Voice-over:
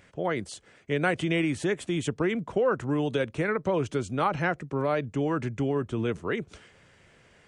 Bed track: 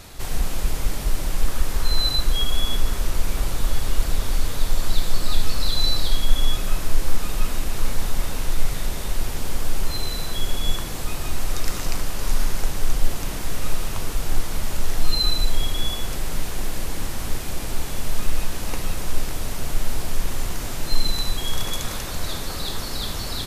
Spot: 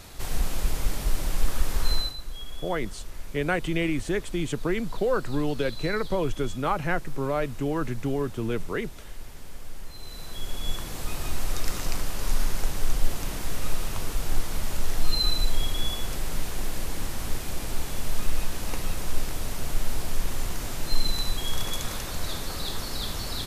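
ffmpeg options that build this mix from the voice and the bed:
-filter_complex "[0:a]adelay=2450,volume=-0.5dB[a];[1:a]volume=10dB,afade=t=out:st=1.91:d=0.23:silence=0.211349,afade=t=in:st=9.94:d=1.27:silence=0.223872[b];[a][b]amix=inputs=2:normalize=0"

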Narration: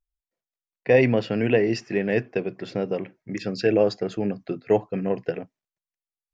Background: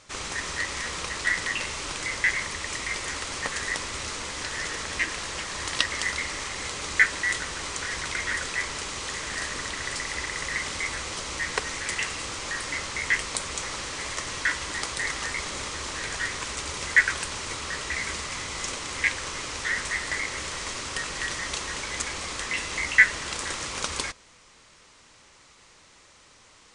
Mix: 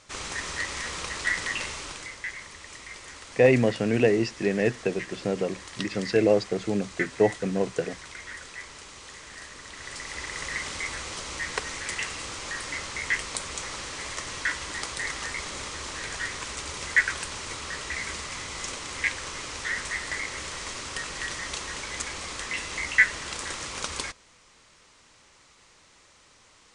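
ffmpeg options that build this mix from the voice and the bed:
-filter_complex "[0:a]adelay=2500,volume=-1dB[a];[1:a]volume=7.5dB,afade=t=out:st=1.64:d=0.52:silence=0.316228,afade=t=in:st=9.63:d=0.8:silence=0.354813[b];[a][b]amix=inputs=2:normalize=0"

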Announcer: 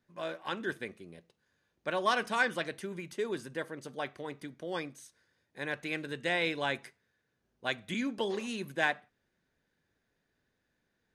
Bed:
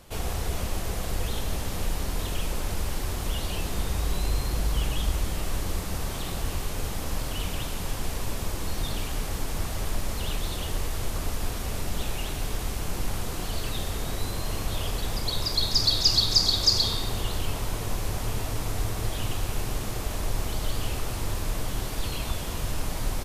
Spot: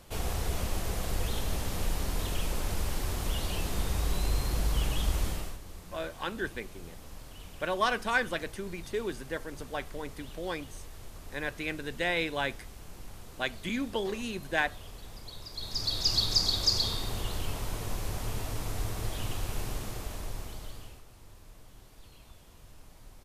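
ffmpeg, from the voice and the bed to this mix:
-filter_complex "[0:a]adelay=5750,volume=1dB[a];[1:a]volume=9dB,afade=t=out:st=5.27:d=0.31:silence=0.199526,afade=t=in:st=15.52:d=0.68:silence=0.266073,afade=t=out:st=19.65:d=1.39:silence=0.11885[b];[a][b]amix=inputs=2:normalize=0"

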